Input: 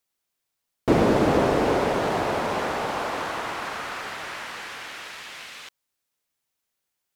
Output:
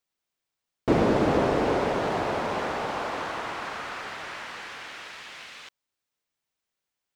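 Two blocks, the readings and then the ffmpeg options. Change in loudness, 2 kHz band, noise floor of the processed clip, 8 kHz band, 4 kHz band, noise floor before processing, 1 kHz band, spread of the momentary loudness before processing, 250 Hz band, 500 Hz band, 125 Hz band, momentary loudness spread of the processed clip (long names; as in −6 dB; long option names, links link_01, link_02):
−2.5 dB, −2.5 dB, below −85 dBFS, −5.5 dB, −3.5 dB, −81 dBFS, −2.5 dB, 17 LU, −2.5 dB, −2.5 dB, −2.5 dB, 17 LU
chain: -af "equalizer=frequency=13000:width=0.76:gain=-10,volume=-2.5dB"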